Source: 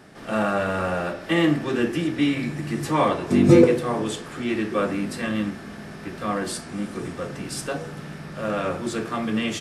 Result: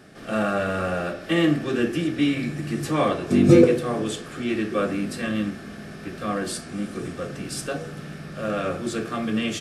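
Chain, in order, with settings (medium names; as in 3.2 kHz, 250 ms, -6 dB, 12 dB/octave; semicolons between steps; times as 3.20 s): peaking EQ 930 Hz -12.5 dB 0.24 oct; band-stop 2 kHz, Q 17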